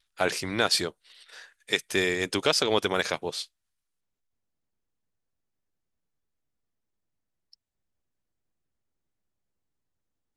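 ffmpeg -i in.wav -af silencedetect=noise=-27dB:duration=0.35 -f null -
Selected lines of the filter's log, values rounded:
silence_start: 0.88
silence_end: 1.72 | silence_duration: 0.84
silence_start: 3.42
silence_end: 10.36 | silence_duration: 6.94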